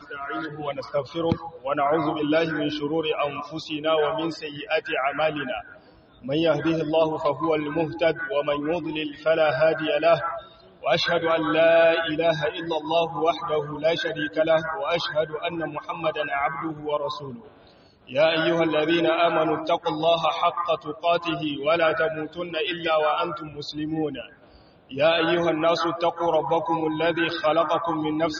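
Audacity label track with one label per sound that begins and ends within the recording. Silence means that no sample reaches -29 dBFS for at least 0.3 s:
6.260000	10.390000	sound
10.840000	17.350000	sound
18.110000	24.210000	sound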